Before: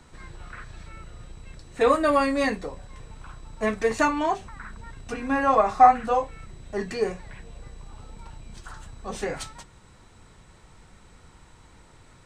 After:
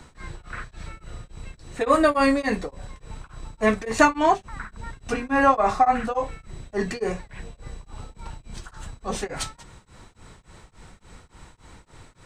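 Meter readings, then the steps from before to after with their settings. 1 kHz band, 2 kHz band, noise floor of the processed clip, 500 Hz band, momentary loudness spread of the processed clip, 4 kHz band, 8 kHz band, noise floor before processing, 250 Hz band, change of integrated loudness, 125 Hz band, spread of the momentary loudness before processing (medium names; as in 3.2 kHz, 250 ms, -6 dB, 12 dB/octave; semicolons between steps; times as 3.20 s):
-0.5 dB, +4.0 dB, -57 dBFS, +1.0 dB, 23 LU, +3.0 dB, +5.0 dB, -53 dBFS, +3.5 dB, +0.5 dB, +4.0 dB, 25 LU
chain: tremolo of two beating tones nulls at 3.5 Hz; trim +6.5 dB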